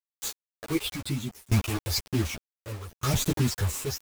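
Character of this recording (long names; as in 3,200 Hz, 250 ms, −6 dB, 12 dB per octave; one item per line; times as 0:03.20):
phaser sweep stages 8, 1 Hz, lowest notch 200–1,600 Hz
a quantiser's noise floor 6 bits, dither none
tremolo saw down 0.66 Hz, depth 95%
a shimmering, thickened sound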